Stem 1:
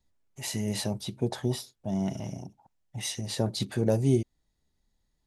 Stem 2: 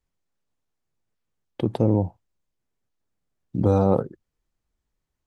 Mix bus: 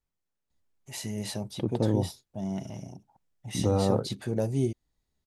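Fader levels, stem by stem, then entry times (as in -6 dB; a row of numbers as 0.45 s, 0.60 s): -3.5 dB, -6.0 dB; 0.50 s, 0.00 s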